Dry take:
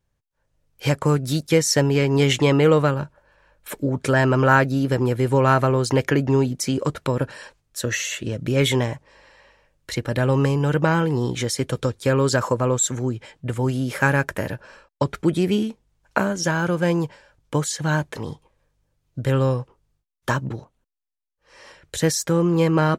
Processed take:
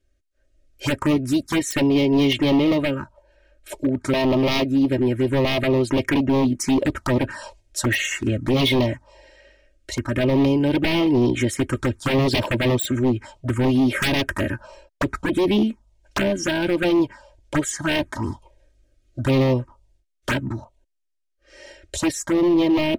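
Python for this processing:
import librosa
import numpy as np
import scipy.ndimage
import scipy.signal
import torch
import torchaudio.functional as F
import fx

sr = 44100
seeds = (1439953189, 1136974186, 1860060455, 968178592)

y = scipy.signal.sosfilt(scipy.signal.butter(2, 7800.0, 'lowpass', fs=sr, output='sos'), x)
y = fx.peak_eq(y, sr, hz=4200.0, db=-4.0, octaves=1.6)
y = y + 0.8 * np.pad(y, (int(3.2 * sr / 1000.0), 0))[:len(y)]
y = fx.rider(y, sr, range_db=10, speed_s=2.0)
y = 10.0 ** (-16.5 / 20.0) * (np.abs((y / 10.0 ** (-16.5 / 20.0) + 3.0) % 4.0 - 2.0) - 1.0)
y = fx.env_phaser(y, sr, low_hz=160.0, high_hz=1500.0, full_db=-18.5)
y = y * 10.0 ** (4.5 / 20.0)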